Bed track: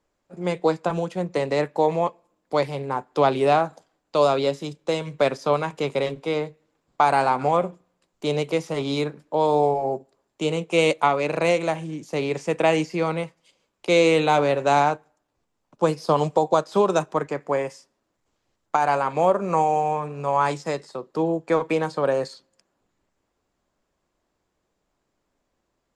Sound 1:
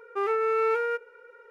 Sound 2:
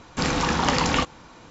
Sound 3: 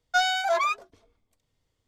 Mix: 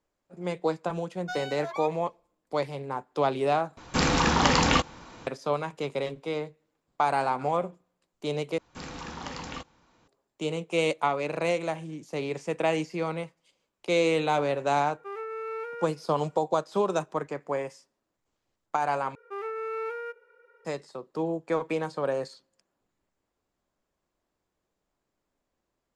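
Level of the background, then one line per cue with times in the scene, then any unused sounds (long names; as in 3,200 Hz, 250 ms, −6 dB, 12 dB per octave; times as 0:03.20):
bed track −6.5 dB
0:01.14: mix in 3 −14 dB
0:03.77: overwrite with 2
0:08.58: overwrite with 2 −16.5 dB
0:14.89: mix in 1 −10.5 dB
0:19.15: overwrite with 1 −8.5 dB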